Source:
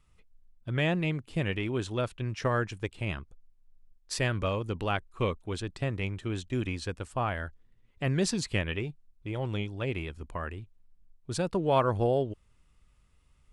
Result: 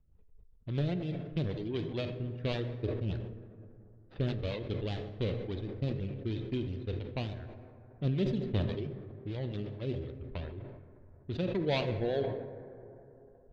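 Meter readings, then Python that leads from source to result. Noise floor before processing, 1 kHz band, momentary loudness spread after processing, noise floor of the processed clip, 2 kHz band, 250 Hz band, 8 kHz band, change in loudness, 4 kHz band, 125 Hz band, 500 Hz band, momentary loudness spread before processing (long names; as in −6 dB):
−65 dBFS, −12.5 dB, 18 LU, −58 dBFS, −11.0 dB, −2.5 dB, below −25 dB, −4.0 dB, −5.5 dB, −2.0 dB, −4.0 dB, 11 LU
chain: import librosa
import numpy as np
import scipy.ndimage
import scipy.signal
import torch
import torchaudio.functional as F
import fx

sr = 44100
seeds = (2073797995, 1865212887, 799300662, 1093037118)

y = scipy.ndimage.median_filter(x, 41, mode='constant')
y = fx.dereverb_blind(y, sr, rt60_s=1.3)
y = fx.env_lowpass(y, sr, base_hz=1500.0, full_db=-27.5)
y = fx.lowpass_res(y, sr, hz=3600.0, q=3.8)
y = fx.transient(y, sr, attack_db=1, sustain_db=-4)
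y = fx.rotary(y, sr, hz=5.0)
y = fx.dynamic_eq(y, sr, hz=1200.0, q=1.0, threshold_db=-54.0, ratio=4.0, max_db=-7)
y = fx.rev_plate(y, sr, seeds[0], rt60_s=3.2, hf_ratio=0.3, predelay_ms=0, drr_db=8.5)
y = fx.sustainer(y, sr, db_per_s=49.0)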